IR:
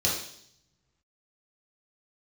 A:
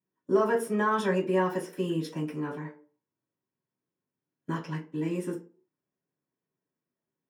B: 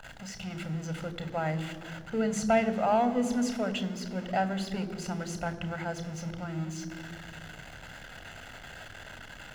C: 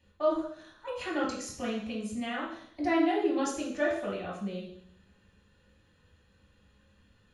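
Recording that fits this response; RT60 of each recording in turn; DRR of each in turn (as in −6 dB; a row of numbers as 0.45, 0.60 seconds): C; 0.45, 2.2, 0.65 seconds; −14.0, 11.0, −5.5 decibels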